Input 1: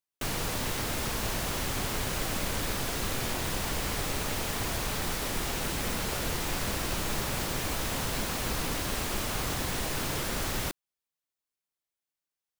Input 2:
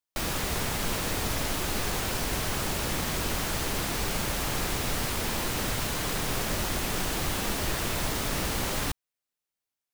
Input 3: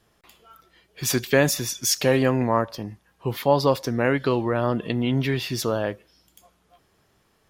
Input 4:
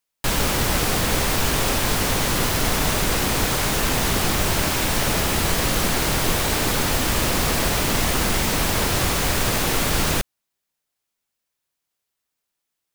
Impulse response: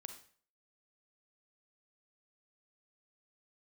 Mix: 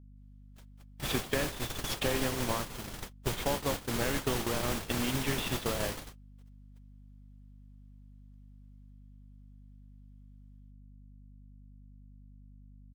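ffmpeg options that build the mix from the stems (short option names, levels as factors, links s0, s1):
-filter_complex "[0:a]highpass=220,equalizer=f=3200:t=o:w=0.21:g=9.5,volume=0.376[s0];[1:a]acrossover=split=140[s1][s2];[s1]acompressor=threshold=0.0282:ratio=6[s3];[s3][s2]amix=inputs=2:normalize=0,flanger=delay=2.2:depth=9.2:regen=-34:speed=0.25:shape=triangular,volume=0.531[s4];[2:a]highshelf=f=4400:t=q:w=3:g=-8,acompressor=threshold=0.0708:ratio=6,volume=0.75,asplit=3[s5][s6][s7];[s6]volume=0.2[s8];[3:a]adelay=300,volume=0.282,asplit=2[s9][s10];[s10]volume=0.398[s11];[s7]apad=whole_len=583970[s12];[s9][s12]sidechaingate=range=0.0224:threshold=0.00158:ratio=16:detection=peak[s13];[s8][s11]amix=inputs=2:normalize=0,aecho=0:1:87|174|261|348|435:1|0.38|0.144|0.0549|0.0209[s14];[s0][s4][s5][s13][s14]amix=inputs=5:normalize=0,agate=range=0.00224:threshold=0.0501:ratio=16:detection=peak,aeval=exprs='val(0)+0.00251*(sin(2*PI*50*n/s)+sin(2*PI*2*50*n/s)/2+sin(2*PI*3*50*n/s)/3+sin(2*PI*4*50*n/s)/4+sin(2*PI*5*50*n/s)/5)':c=same,acompressor=threshold=0.0398:ratio=2"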